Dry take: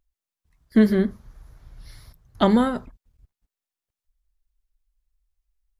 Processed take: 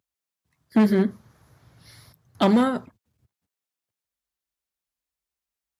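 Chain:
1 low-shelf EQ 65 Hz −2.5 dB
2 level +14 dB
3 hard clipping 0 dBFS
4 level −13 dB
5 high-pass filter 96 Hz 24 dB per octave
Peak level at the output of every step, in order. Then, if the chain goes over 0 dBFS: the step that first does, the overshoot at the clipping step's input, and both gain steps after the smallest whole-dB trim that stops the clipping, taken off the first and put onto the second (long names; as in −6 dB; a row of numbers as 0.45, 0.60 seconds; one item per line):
−6.0, +8.0, 0.0, −13.0, −7.0 dBFS
step 2, 8.0 dB
step 2 +6 dB, step 4 −5 dB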